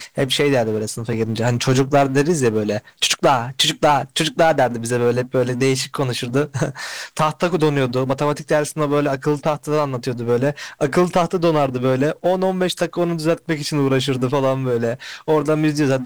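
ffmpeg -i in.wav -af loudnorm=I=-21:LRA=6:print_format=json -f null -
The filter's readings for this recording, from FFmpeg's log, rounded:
"input_i" : "-19.2",
"input_tp" : "-6.9",
"input_lra" : "2.4",
"input_thresh" : "-29.2",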